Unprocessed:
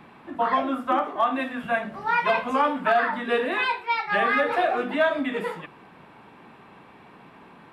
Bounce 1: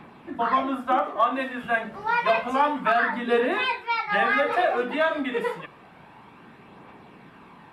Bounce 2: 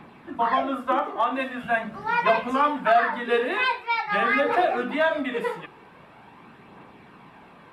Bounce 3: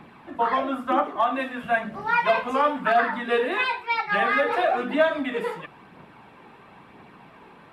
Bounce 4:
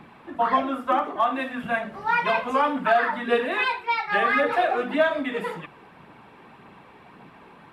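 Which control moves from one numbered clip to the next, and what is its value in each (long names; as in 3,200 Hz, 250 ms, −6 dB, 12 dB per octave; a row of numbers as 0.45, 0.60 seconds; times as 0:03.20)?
phase shifter, speed: 0.29, 0.44, 1, 1.8 Hertz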